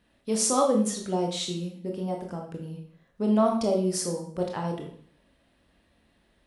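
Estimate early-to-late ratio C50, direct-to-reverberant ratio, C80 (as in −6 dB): 6.0 dB, 1.0 dB, 10.0 dB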